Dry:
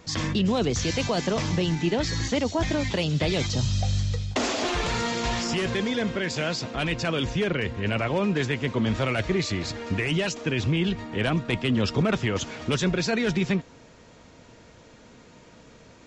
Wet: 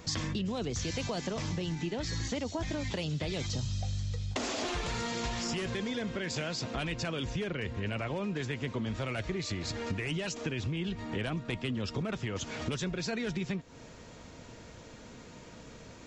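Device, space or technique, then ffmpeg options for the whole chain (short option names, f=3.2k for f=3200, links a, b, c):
ASMR close-microphone chain: -af "lowshelf=f=150:g=3.5,acompressor=threshold=-32dB:ratio=6,highshelf=f=7.8k:g=6"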